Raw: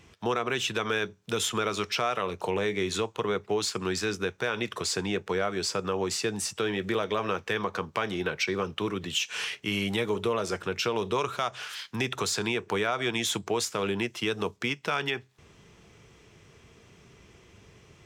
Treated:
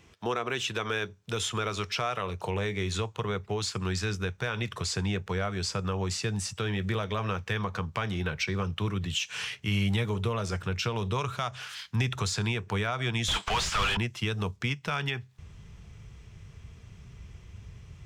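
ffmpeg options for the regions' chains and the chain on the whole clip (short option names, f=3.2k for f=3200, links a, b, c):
-filter_complex "[0:a]asettb=1/sr,asplit=3[a][b][c];[a]atrim=end=13.284[d];[b]atrim=start=13.28:end=13.97,asetpts=PTS-STARTPTS,afade=t=in:d=0.004:c=qsin,afade=t=out:st=0.686:d=0.004:c=qsin,highpass=1.1k,equalizer=f=3.1k:t=o:w=0.3:g=5.5,asplit=2[e][f];[f]highpass=f=720:p=1,volume=34dB,asoftclip=type=tanh:threshold=-15.5dB[g];[e][g]amix=inputs=2:normalize=0,lowpass=f=2.5k:p=1,volume=-6dB[h];[c]atrim=start=13.966[i];[d][h]acrossfade=d=0.004:c1=hsin:c2=qsin[j];[j][i]acrossfade=d=0.004:c1=qsin:c2=hsin,acrossover=split=9600[k][l];[l]acompressor=threshold=-54dB:ratio=4:attack=1:release=60[m];[k][m]amix=inputs=2:normalize=0,asubboost=boost=9:cutoff=110,volume=-2dB"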